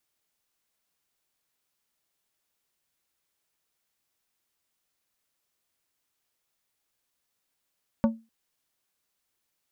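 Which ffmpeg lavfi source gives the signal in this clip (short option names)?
-f lavfi -i "aevalsrc='0.168*pow(10,-3*t/0.27)*sin(2*PI*225*t)+0.0841*pow(10,-3*t/0.142)*sin(2*PI*562.5*t)+0.0422*pow(10,-3*t/0.102)*sin(2*PI*900*t)+0.0211*pow(10,-3*t/0.088)*sin(2*PI*1125*t)+0.0106*pow(10,-3*t/0.073)*sin(2*PI*1462.5*t)':d=0.25:s=44100"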